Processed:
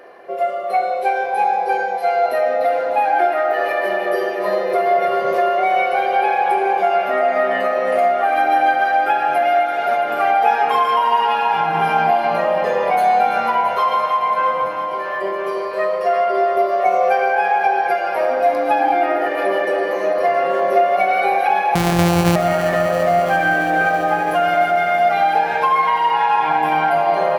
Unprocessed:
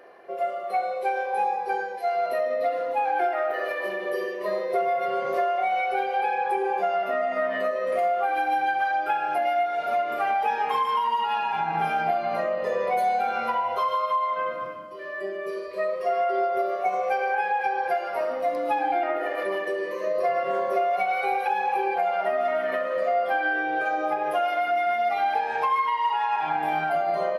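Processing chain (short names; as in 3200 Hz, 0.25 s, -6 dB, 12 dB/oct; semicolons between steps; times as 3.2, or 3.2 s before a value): 21.75–22.36 sample sorter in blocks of 256 samples; echo with dull and thin repeats by turns 0.168 s, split 830 Hz, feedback 89%, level -9.5 dB; gain +7.5 dB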